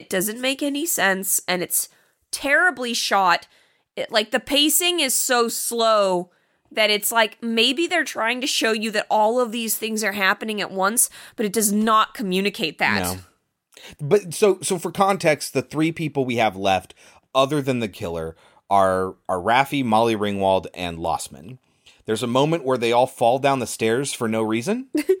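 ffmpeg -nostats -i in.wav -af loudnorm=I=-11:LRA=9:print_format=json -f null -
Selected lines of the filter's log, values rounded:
"input_i" : "-20.6",
"input_tp" : "-3.6",
"input_lra" : "3.2",
"input_thresh" : "-31.0",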